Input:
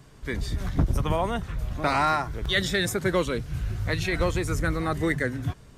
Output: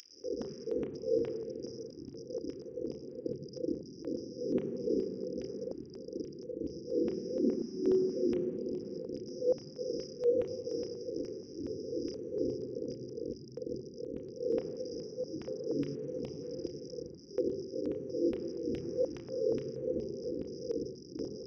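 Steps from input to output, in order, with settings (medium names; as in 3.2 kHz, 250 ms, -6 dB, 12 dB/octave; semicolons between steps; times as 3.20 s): one-bit comparator; ten-band graphic EQ 250 Hz +9 dB, 4 kHz -8 dB, 8 kHz +9 dB; wide varispeed 0.269×; high-order bell 570 Hz +11.5 dB; peak limiter -18.5 dBFS, peak gain reduction 7.5 dB; FFT band-reject 530–4800 Hz; LFO high-pass saw down 2.4 Hz 200–2800 Hz; on a send at -3 dB: reverberation RT60 3.6 s, pre-delay 3 ms; on the sum: step-sequenced notch 4.2 Hz 490–7600 Hz; trim -7.5 dB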